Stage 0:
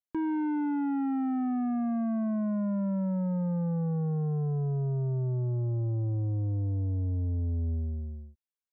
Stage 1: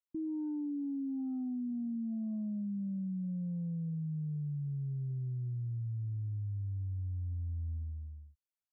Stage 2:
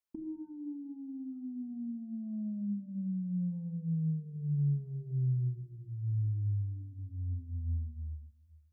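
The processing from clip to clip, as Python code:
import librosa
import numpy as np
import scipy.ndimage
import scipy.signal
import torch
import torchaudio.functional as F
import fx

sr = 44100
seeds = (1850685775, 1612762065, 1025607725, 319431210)

y1 = fx.envelope_sharpen(x, sr, power=3.0)
y1 = y1 * 10.0 ** (-7.5 / 20.0)
y2 = fx.dynamic_eq(y1, sr, hz=260.0, q=1.0, threshold_db=-51.0, ratio=4.0, max_db=7)
y2 = fx.over_compress(y2, sr, threshold_db=-34.0, ratio=-0.5)
y2 = fx.room_shoebox(y2, sr, seeds[0], volume_m3=2100.0, walls='furnished', distance_m=1.5)
y2 = y2 * 10.0 ** (-2.5 / 20.0)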